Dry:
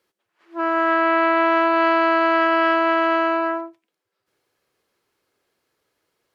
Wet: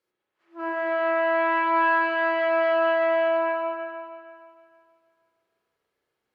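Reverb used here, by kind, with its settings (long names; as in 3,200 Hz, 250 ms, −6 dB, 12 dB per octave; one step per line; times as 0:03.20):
spring reverb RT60 2.2 s, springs 33/47 ms, chirp 50 ms, DRR −5 dB
level −12 dB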